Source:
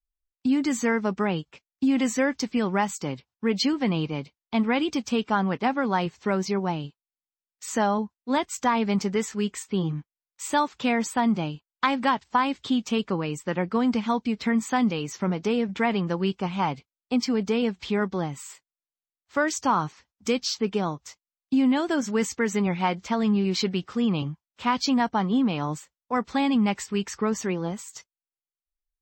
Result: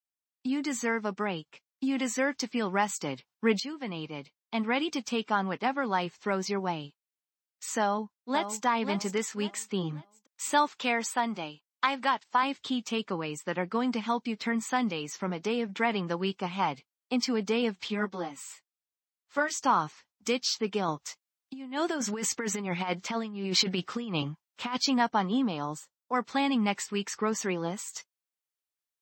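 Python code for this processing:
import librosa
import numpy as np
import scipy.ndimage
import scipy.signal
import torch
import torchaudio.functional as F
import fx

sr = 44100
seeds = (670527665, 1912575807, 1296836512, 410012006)

y = fx.echo_throw(x, sr, start_s=7.8, length_s=0.84, ms=540, feedback_pct=30, wet_db=-8.5)
y = fx.highpass(y, sr, hz=350.0, slope=6, at=(10.74, 12.43))
y = fx.ensemble(y, sr, at=(17.88, 19.64))
y = fx.over_compress(y, sr, threshold_db=-26.0, ratio=-0.5, at=(20.88, 24.78))
y = fx.peak_eq(y, sr, hz=2300.0, db=-8.5, octaves=0.77, at=(25.45, 26.14))
y = fx.edit(y, sr, fx.fade_in_from(start_s=3.6, length_s=2.89, floor_db=-15.5), tone=tone)
y = scipy.signal.sosfilt(scipy.signal.butter(2, 140.0, 'highpass', fs=sr, output='sos'), y)
y = fx.low_shelf(y, sr, hz=480.0, db=-6.0)
y = fx.rider(y, sr, range_db=10, speed_s=2.0)
y = F.gain(torch.from_numpy(y), -1.5).numpy()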